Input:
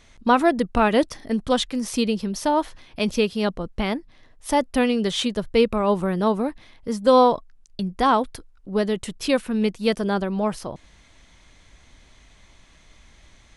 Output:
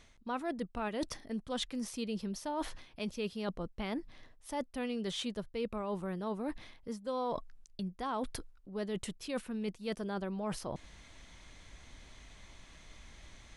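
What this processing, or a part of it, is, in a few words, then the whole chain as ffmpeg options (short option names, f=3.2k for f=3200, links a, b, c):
compression on the reversed sound: -af "areverse,acompressor=threshold=-34dB:ratio=5,areverse,volume=-2dB"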